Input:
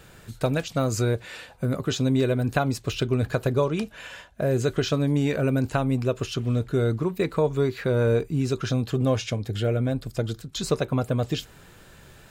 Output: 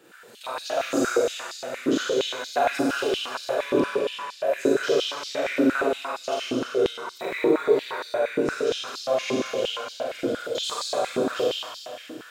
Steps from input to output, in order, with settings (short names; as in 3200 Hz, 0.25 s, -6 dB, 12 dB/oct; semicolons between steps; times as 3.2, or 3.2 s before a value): Schroeder reverb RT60 2.7 s, combs from 32 ms, DRR -8 dB; stepped high-pass 8.6 Hz 310–4500 Hz; gain -8 dB